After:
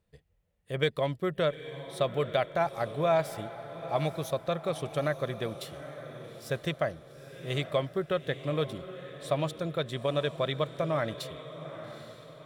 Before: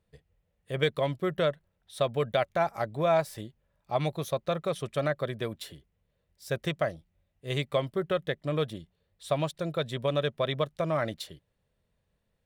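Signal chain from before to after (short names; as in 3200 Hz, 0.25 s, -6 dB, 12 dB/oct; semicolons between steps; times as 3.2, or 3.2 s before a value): diffused feedback echo 0.858 s, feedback 43%, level -12 dB; gain -1 dB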